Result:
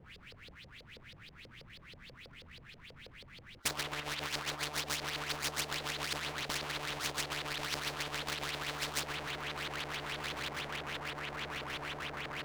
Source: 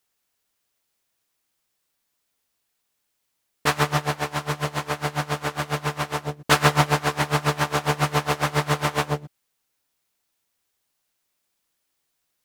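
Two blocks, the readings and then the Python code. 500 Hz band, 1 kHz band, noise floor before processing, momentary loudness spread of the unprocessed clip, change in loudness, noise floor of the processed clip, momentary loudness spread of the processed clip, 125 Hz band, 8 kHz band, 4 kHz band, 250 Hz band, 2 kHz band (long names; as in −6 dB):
−16.0 dB, −16.0 dB, −76 dBFS, 8 LU, −13.5 dB, −57 dBFS, 17 LU, −20.0 dB, −7.5 dB, −6.0 dB, −16.5 dB, −10.0 dB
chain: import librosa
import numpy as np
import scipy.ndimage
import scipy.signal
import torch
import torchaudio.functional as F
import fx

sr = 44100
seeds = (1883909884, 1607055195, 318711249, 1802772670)

p1 = fx.spec_gate(x, sr, threshold_db=-25, keep='strong')
p2 = fx.env_lowpass_down(p1, sr, base_hz=1500.0, full_db=-18.5)
p3 = fx.curve_eq(p2, sr, hz=(150.0, 760.0, 2100.0), db=(0, -28, -9))
p4 = fx.leveller(p3, sr, passes=1)
p5 = fx.over_compress(p4, sr, threshold_db=-26.0, ratio=-1.0)
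p6 = p5 + fx.echo_diffused(p5, sr, ms=1417, feedback_pct=44, wet_db=-12.0, dry=0)
p7 = fx.filter_lfo_lowpass(p6, sr, shape='saw_up', hz=6.2, low_hz=470.0, high_hz=4900.0, q=5.2)
p8 = fx.air_absorb(p7, sr, metres=240.0)
p9 = fx.power_curve(p8, sr, exponent=0.7)
p10 = fx.spectral_comp(p9, sr, ratio=10.0)
y = p10 * 10.0 ** (-4.5 / 20.0)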